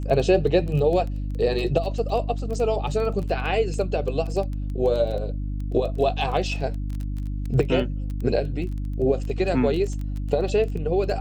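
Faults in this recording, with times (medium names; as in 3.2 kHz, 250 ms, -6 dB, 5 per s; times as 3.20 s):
crackle 16 per s -29 dBFS
hum 50 Hz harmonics 6 -28 dBFS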